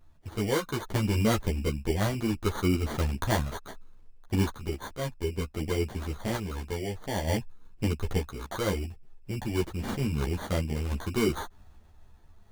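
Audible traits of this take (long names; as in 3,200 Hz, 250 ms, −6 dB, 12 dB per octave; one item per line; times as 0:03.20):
aliases and images of a low sample rate 2,600 Hz, jitter 0%
sample-and-hold tremolo 1.1 Hz
a shimmering, thickened sound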